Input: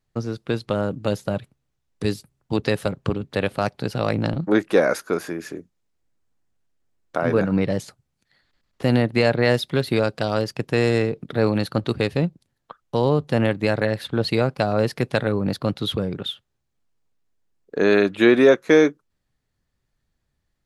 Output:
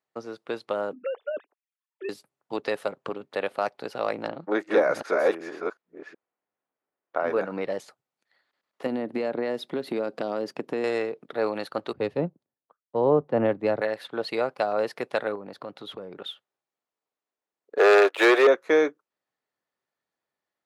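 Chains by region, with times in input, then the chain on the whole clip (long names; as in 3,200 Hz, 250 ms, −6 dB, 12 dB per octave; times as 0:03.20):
0:00.93–0:02.09: three sine waves on the formant tracks + downward compressor 2.5 to 1, threshold −24 dBFS
0:04.28–0:07.26: delay that plays each chunk backwards 373 ms, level −1 dB + low-pass that shuts in the quiet parts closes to 2,500 Hz, open at −13 dBFS
0:08.86–0:10.84: downward compressor, threshold −24 dBFS + parametric band 240 Hz +14.5 dB 1.9 octaves
0:11.93–0:13.81: spectral tilt −4 dB per octave + multiband upward and downward expander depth 100%
0:15.35–0:16.18: spectral tilt −1.5 dB per octave + downward compressor 3 to 1, threshold −26 dBFS + one half of a high-frequency compander encoder only
0:17.78–0:18.47: Butterworth high-pass 370 Hz 48 dB per octave + leveller curve on the samples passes 3
whole clip: high-pass filter 530 Hz 12 dB per octave; high-shelf EQ 2,400 Hz −11.5 dB; notch filter 1,600 Hz, Q 25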